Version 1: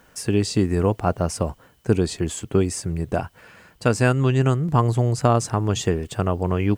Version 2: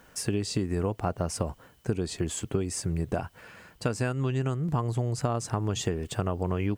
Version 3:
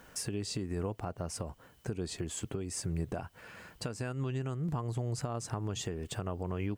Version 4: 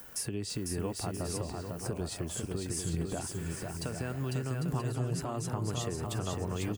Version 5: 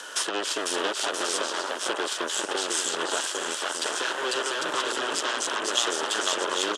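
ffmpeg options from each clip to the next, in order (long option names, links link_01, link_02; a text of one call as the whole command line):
ffmpeg -i in.wav -af "acompressor=threshold=-23dB:ratio=6,volume=-1.5dB" out.wav
ffmpeg -i in.wav -af "alimiter=level_in=1.5dB:limit=-24dB:level=0:latency=1:release=497,volume=-1.5dB" out.wav
ffmpeg -i in.wav -filter_complex "[0:a]acrossover=split=360|900|5300[link_01][link_02][link_03][link_04];[link_04]acompressor=mode=upward:threshold=-52dB:ratio=2.5[link_05];[link_01][link_02][link_03][link_05]amix=inputs=4:normalize=0,aexciter=amount=1.9:drive=5.6:freq=9700,aecho=1:1:500|800|980|1088|1153:0.631|0.398|0.251|0.158|0.1" out.wav
ffmpeg -i in.wav -af "aeval=exprs='0.112*sin(PI/2*2.24*val(0)/0.112)':channel_layout=same,aeval=exprs='0.112*(cos(1*acos(clip(val(0)/0.112,-1,1)))-cos(1*PI/2))+0.0562*(cos(2*acos(clip(val(0)/0.112,-1,1)))-cos(2*PI/2))+0.0316*(cos(3*acos(clip(val(0)/0.112,-1,1)))-cos(3*PI/2))+0.0355*(cos(7*acos(clip(val(0)/0.112,-1,1)))-cos(7*PI/2))':channel_layout=same,highpass=frequency=410:width=0.5412,highpass=frequency=410:width=1.3066,equalizer=frequency=490:width_type=q:width=4:gain=-5,equalizer=frequency=740:width_type=q:width=4:gain=-7,equalizer=frequency=1500:width_type=q:width=4:gain=4,equalizer=frequency=2200:width_type=q:width=4:gain=-9,equalizer=frequency=3200:width_type=q:width=4:gain=7,equalizer=frequency=4500:width_type=q:width=4:gain=-3,lowpass=frequency=8300:width=0.5412,lowpass=frequency=8300:width=1.3066,volume=2.5dB" out.wav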